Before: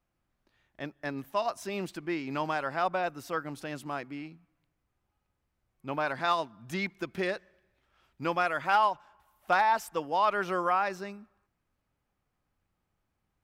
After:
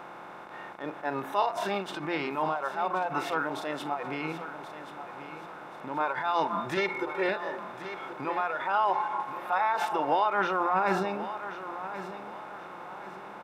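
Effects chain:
compressor on every frequency bin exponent 0.2
brickwall limiter −14 dBFS, peak gain reduction 8.5 dB
high-shelf EQ 4,200 Hz −9.5 dB
hum removal 57.71 Hz, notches 3
noise reduction from a noise print of the clip's start 16 dB
0:06.77–0:07.29: comb filter 2.2 ms, depth 93%
0:10.60–0:11.05: low-shelf EQ 200 Hz +12 dB
repeating echo 1,080 ms, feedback 38%, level −12 dB

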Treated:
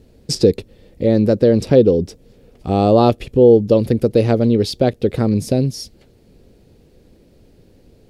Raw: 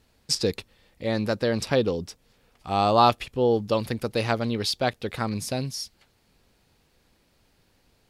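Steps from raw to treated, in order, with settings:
low shelf with overshoot 680 Hz +12.5 dB, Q 1.5
in parallel at +2.5 dB: downward compressor, threshold −20 dBFS, peak gain reduction 15 dB
on the sum: level −4 dB

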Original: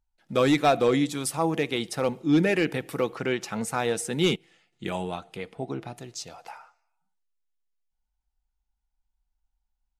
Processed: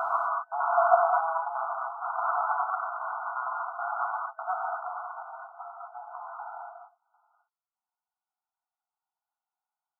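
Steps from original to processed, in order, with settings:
slices reordered back to front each 86 ms, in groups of 6
harmonic generator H 4 −16 dB, 6 −15 dB, 7 −9 dB, 8 −29 dB, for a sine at −12.5 dBFS
brick-wall band-pass 650–1,500 Hz
reverb whose tail is shaped and stops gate 280 ms flat, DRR −4 dB
level −2.5 dB

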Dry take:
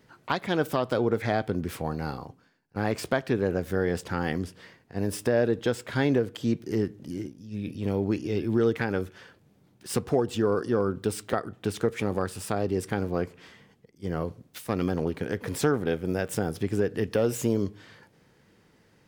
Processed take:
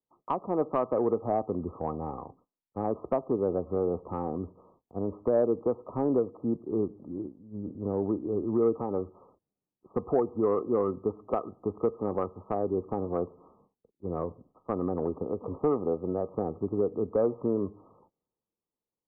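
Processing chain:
noise gate −55 dBFS, range −19 dB
parametric band 120 Hz −10.5 dB 1.5 octaves
in parallel at +2.5 dB: downward compressor 5 to 1, threshold −32 dBFS, peak gain reduction 11 dB
on the sum: linear-phase brick-wall low-pass 1,300 Hz
soft clipping −10.5 dBFS, distortion −26 dB
multiband upward and downward expander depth 40%
level −3 dB

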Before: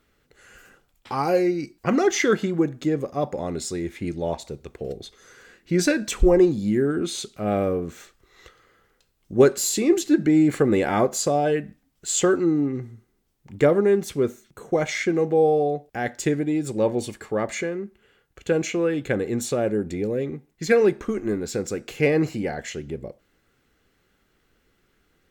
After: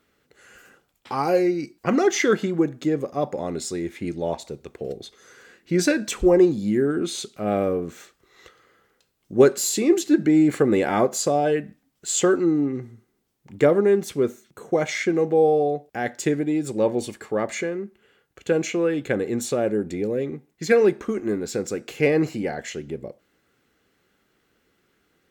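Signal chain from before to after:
high-pass filter 260 Hz 6 dB per octave
low-shelf EQ 370 Hz +5 dB

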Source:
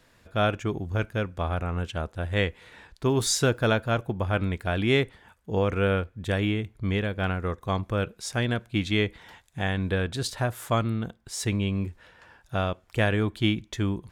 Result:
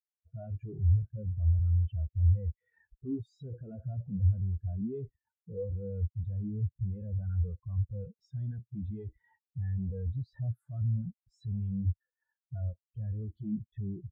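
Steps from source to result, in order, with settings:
0:11.84–0:12.61: parametric band 64 Hz −11.5 dB 0.53 octaves
fuzz pedal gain 48 dB, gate −57 dBFS
every bin expanded away from the loudest bin 4 to 1
level −7.5 dB

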